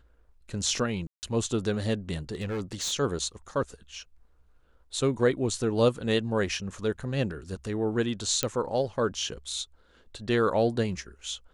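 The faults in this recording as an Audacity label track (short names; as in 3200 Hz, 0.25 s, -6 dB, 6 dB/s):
1.070000	1.230000	gap 0.159 s
2.340000	2.930000	clipped -27.5 dBFS
8.430000	8.430000	pop -9 dBFS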